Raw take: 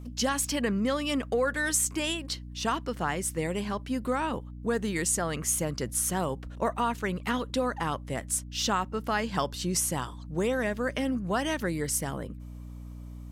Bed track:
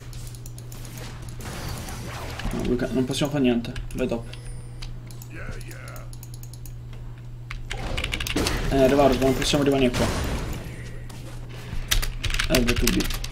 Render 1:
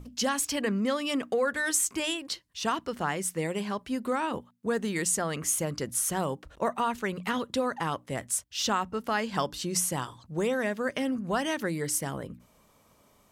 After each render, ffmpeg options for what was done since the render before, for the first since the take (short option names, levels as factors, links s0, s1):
-af "bandreject=f=60:t=h:w=6,bandreject=f=120:t=h:w=6,bandreject=f=180:t=h:w=6,bandreject=f=240:t=h:w=6,bandreject=f=300:t=h:w=6"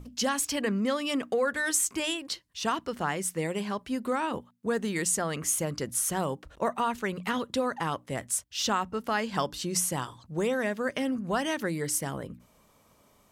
-af anull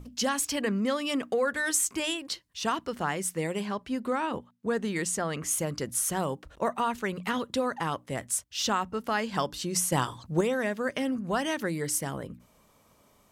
-filter_complex "[0:a]asettb=1/sr,asplit=3[s0][s1][s2];[s0]atrim=end=3.664[s3];[s1]atrim=start=3.66:end=5.51,asetpts=PTS-STARTPTS,afade=t=in:d=0.004:c=qsin,afade=t=out:st=1.846:d=0.004:c=qsin,highshelf=f=7800:g=-8[s4];[s2]atrim=start=5.506[s5];[s3][s4]acrossfade=d=0.004:c1=hsin:c2=qsin[s6];[s6][s5]acrossfade=d=0.004:c1=qsin:c2=hsin,asettb=1/sr,asplit=3[s7][s8][s9];[s7]atrim=end=9.924[s10];[s8]atrim=start=9.92:end=10.41,asetpts=PTS-STARTPTS,afade=t=in:d=0.004:c=qsin,afade=t=out:st=0.486:d=0.004:c=qsin,acontrast=51[s11];[s9]atrim=start=10.406[s12];[s10][s11]acrossfade=d=0.004:c1=hsin:c2=qsin[s13];[s13][s12]acrossfade=d=0.004:c1=qsin:c2=hsin"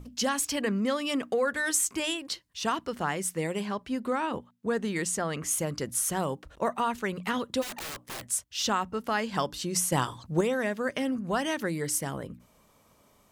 -filter_complex "[0:a]asplit=3[s0][s1][s2];[s0]afade=t=out:st=7.61:d=0.02[s3];[s1]aeval=exprs='(mod(42.2*val(0)+1,2)-1)/42.2':c=same,afade=t=in:st=7.61:d=0.02,afade=t=out:st=8.24:d=0.02[s4];[s2]afade=t=in:st=8.24:d=0.02[s5];[s3][s4][s5]amix=inputs=3:normalize=0"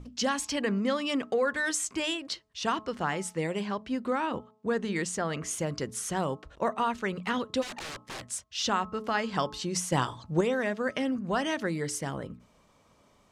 -af "lowpass=6700,bandreject=f=215.2:t=h:w=4,bandreject=f=430.4:t=h:w=4,bandreject=f=645.6:t=h:w=4,bandreject=f=860.8:t=h:w=4,bandreject=f=1076:t=h:w=4,bandreject=f=1291.2:t=h:w=4"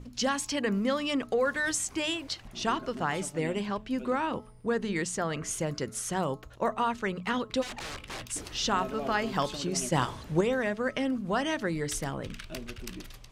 -filter_complex "[1:a]volume=0.106[s0];[0:a][s0]amix=inputs=2:normalize=0"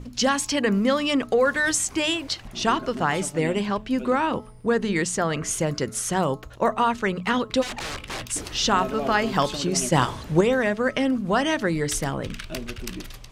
-af "volume=2.24"